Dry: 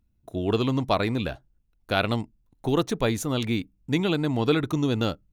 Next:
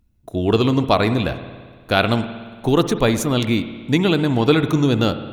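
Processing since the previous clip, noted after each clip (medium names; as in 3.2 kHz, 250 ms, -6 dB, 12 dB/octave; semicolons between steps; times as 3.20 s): spring tank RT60 1.7 s, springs 56 ms, chirp 45 ms, DRR 10.5 dB; trim +7 dB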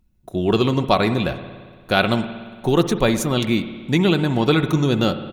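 comb 5.4 ms, depth 35%; trim -1 dB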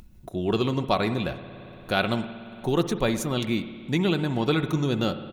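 upward compressor, threshold -27 dBFS; trim -6.5 dB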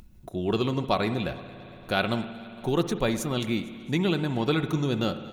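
thinning echo 229 ms, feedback 63%, level -21 dB; trim -1.5 dB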